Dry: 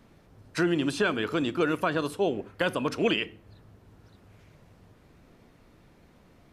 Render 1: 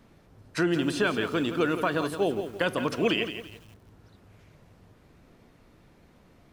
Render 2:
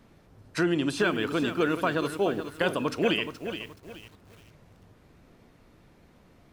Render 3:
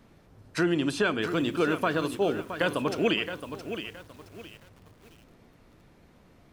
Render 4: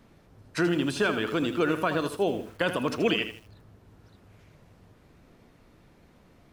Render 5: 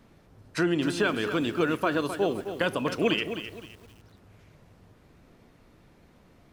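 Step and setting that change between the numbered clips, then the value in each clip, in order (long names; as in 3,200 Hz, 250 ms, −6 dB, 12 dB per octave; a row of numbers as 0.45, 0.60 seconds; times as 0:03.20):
feedback echo at a low word length, delay time: 169, 424, 669, 80, 260 milliseconds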